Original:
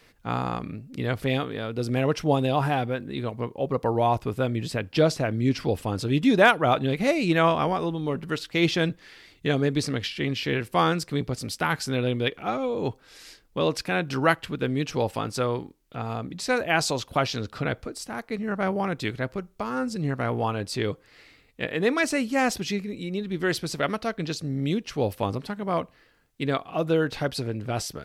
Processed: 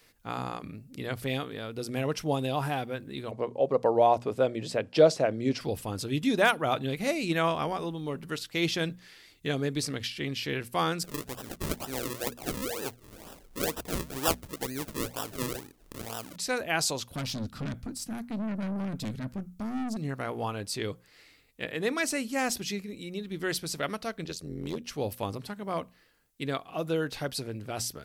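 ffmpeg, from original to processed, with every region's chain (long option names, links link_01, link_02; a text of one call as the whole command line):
ffmpeg -i in.wav -filter_complex "[0:a]asettb=1/sr,asplit=3[link_01][link_02][link_03];[link_01]atrim=end=3.314[link_04];[link_02]atrim=start=3.31:end=5.61,asetpts=PTS-STARTPTS,afade=type=in:duration=0.004:curve=qsin,afade=type=out:start_time=2.296:duration=0.004:curve=qsin,highpass=120,lowpass=7600,equalizer=frequency=570:width_type=o:width=1.2:gain=10[link_05];[link_03]atrim=start=5.606[link_06];[link_04][link_05]acrossfade=duration=0.004:curve1=hsin:curve2=qsin[link_07];[link_07][link_06]acrossfade=duration=0.004:curve1=qsin:curve2=hsin,asettb=1/sr,asplit=3[link_08][link_09][link_10];[link_08]atrim=end=11.044[link_11];[link_09]atrim=start=11.04:end=16.36,asetpts=PTS-STARTPTS,afade=type=in:duration=0.004:curve=qsin,afade=type=out:start_time=5.316:duration=0.004:curve=qsin,equalizer=frequency=140:width=0.76:gain=-8,acompressor=mode=upward:threshold=-33dB:ratio=2.5:attack=3.2:release=140:knee=2.83:detection=peak,acrusher=samples=40:mix=1:aa=0.000001:lfo=1:lforange=40:lforate=2.1[link_12];[link_10]atrim=start=16.356[link_13];[link_11][link_12]acrossfade=duration=0.004:curve1=hsin:curve2=qsin[link_14];[link_14][link_13]acrossfade=duration=0.004:curve1=qsin:curve2=hsin,asettb=1/sr,asplit=3[link_15][link_16][link_17];[link_15]atrim=end=17.154[link_18];[link_16]atrim=start=17.15:end=19.97,asetpts=PTS-STARTPTS,afade=type=in:duration=0.004:curve=qsin,afade=type=out:start_time=2.816:duration=0.004:curve=qsin,lowshelf=frequency=320:width_type=q:width=3:gain=8.5,aeval=exprs='(tanh(15.8*val(0)+0.3)-tanh(0.3))/15.8':channel_layout=same[link_19];[link_17]atrim=start=19.966[link_20];[link_18][link_19]acrossfade=duration=0.004:curve1=hsin:curve2=qsin[link_21];[link_21][link_20]acrossfade=duration=0.004:curve1=qsin:curve2=hsin,asettb=1/sr,asplit=3[link_22][link_23][link_24];[link_22]atrim=end=24.244[link_25];[link_23]atrim=start=24.24:end=24.85,asetpts=PTS-STARTPTS,afade=type=in:duration=0.004:curve=qsin,afade=type=out:start_time=0.606:duration=0.004:curve=qsin,equalizer=frequency=390:width=4.9:gain=10,tremolo=f=86:d=0.857,asoftclip=type=hard:threshold=-21dB[link_26];[link_24]atrim=start=24.846[link_27];[link_25][link_26]acrossfade=duration=0.004:curve1=hsin:curve2=qsin[link_28];[link_28][link_27]acrossfade=duration=0.004:curve1=qsin:curve2=hsin,highshelf=frequency=5700:gain=12,bandreject=frequency=60:width_type=h:width=6,bandreject=frequency=120:width_type=h:width=6,bandreject=frequency=180:width_type=h:width=6,bandreject=frequency=240:width_type=h:width=6,volume=-6.5dB" out.wav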